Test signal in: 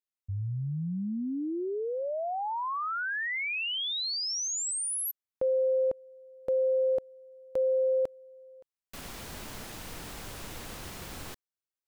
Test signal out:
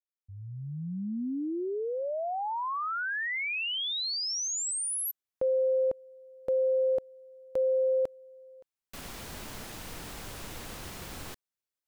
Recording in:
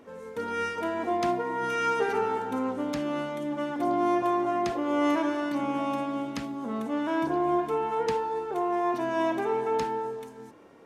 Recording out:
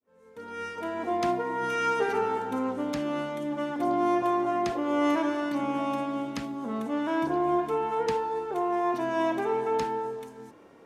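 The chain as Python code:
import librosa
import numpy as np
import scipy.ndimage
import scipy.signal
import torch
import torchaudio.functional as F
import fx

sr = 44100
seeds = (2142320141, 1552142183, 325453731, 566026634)

y = fx.fade_in_head(x, sr, length_s=1.24)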